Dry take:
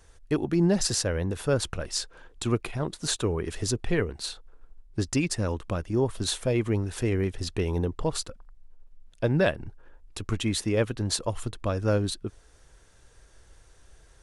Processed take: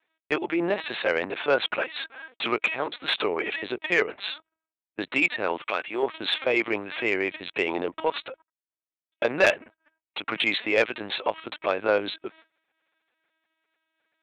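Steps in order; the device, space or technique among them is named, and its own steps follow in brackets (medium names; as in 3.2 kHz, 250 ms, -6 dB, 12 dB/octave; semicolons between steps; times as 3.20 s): talking toy (LPC vocoder at 8 kHz pitch kept; high-pass 560 Hz 12 dB/octave; peaking EQ 2.3 kHz +8.5 dB 0.51 oct; saturation -18 dBFS, distortion -18 dB); gate -57 dBFS, range -22 dB; 5.62–6.03 s: tilt EQ +3 dB/octave; trim +8.5 dB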